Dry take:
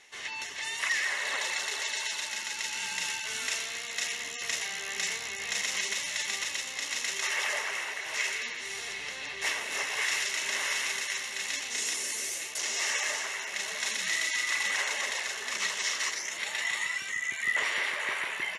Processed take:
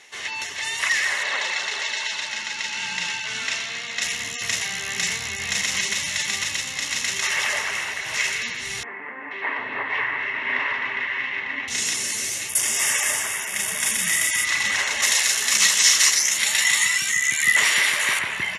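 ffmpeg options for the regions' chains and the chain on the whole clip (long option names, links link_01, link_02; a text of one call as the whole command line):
ffmpeg -i in.wav -filter_complex "[0:a]asettb=1/sr,asplit=3[link_01][link_02][link_03];[link_01]atrim=end=1.234[link_04];[link_02]atrim=start=1.23:end=4.02,asetpts=PTS-STARTPTS,afade=type=in:duration=0.004:curve=qsin,afade=type=out:start_time=2.786:duration=0.004:curve=qsin,highpass=140,lowpass=5300,bandreject=frequency=50:width_type=h:width=6,bandreject=frequency=100:width_type=h:width=6,bandreject=frequency=150:width_type=h:width=6,bandreject=frequency=200:width_type=h:width=6,bandreject=frequency=250:width_type=h:width=6,bandreject=frequency=300:width_type=h:width=6,bandreject=frequency=350:width_type=h:width=6,bandreject=frequency=400:width_type=h:width=6,bandreject=frequency=450:width_type=h:width=6[link_05];[link_03]atrim=start=4.016[link_06];[link_04][link_05]acrossfade=duration=0.004:curve1=hsin:curve2=qsin[link_07];[link_07][link_06]acrossfade=duration=0.004:curve1=qsin:curve2=hsin,asettb=1/sr,asplit=3[link_08][link_09][link_10];[link_08]atrim=end=8.834[link_11];[link_09]atrim=start=8.83:end=11.68,asetpts=PTS-STARTPTS,afade=type=in:duration=0.004:curve=qsin,afade=type=out:start_time=2.846:duration=0.004:curve=qsin,highpass=150,equalizer=frequency=170:width_type=q:width=4:gain=-9,equalizer=frequency=260:width_type=q:width=4:gain=8,equalizer=frequency=430:width_type=q:width=4:gain=3,equalizer=frequency=1000:width_type=q:width=4:gain=7,equalizer=frequency=1900:width_type=q:width=4:gain=6,lowpass=frequency=2500:width=0.5412,lowpass=frequency=2500:width=1.3066,acrossover=split=190|1900[link_12][link_13][link_14];[link_14]adelay=480[link_15];[link_12]adelay=750[link_16];[link_16][link_13][link_15]amix=inputs=3:normalize=0,atrim=end_sample=125685[link_17];[link_10]atrim=start=11.676[link_18];[link_11][link_17]acrossfade=duration=0.004:curve1=hsin:curve2=qsin[link_19];[link_19][link_18]acrossfade=duration=0.004:curve1=qsin:curve2=hsin,asettb=1/sr,asplit=3[link_20][link_21][link_22];[link_20]atrim=end=12.494[link_23];[link_21]atrim=start=12.49:end=14.45,asetpts=PTS-STARTPTS,afade=type=in:duration=0.004:curve=qsin,afade=type=out:start_time=1.956:duration=0.004:curve=qsin,asuperstop=centerf=4100:order=8:qfactor=7.4,highshelf=frequency=7600:width_type=q:width=1.5:gain=12[link_24];[link_22]atrim=start=14.446[link_25];[link_23][link_24]acrossfade=duration=0.004:curve1=hsin:curve2=qsin[link_26];[link_26][link_25]acrossfade=duration=0.004:curve1=qsin:curve2=hsin,asettb=1/sr,asplit=3[link_27][link_28][link_29];[link_27]atrim=end=15.024[link_30];[link_28]atrim=start=15.02:end=18.19,asetpts=PTS-STARTPTS,afade=type=in:duration=0.004:curve=qsin,afade=type=out:start_time=3.166:duration=0.004:curve=qsin,highpass=frequency=180:poles=1,aemphasis=mode=production:type=75kf,asplit=2[link_31][link_32];[link_32]adelay=14,volume=-12.5dB[link_33];[link_31][link_33]amix=inputs=2:normalize=0,atrim=end_sample=139797[link_34];[link_29]atrim=start=18.186[link_35];[link_30][link_34]acrossfade=duration=0.004:curve1=hsin:curve2=qsin[link_36];[link_36][link_35]acrossfade=duration=0.004:curve1=qsin:curve2=hsin,highpass=59,asubboost=boost=6:cutoff=170,volume=7.5dB" out.wav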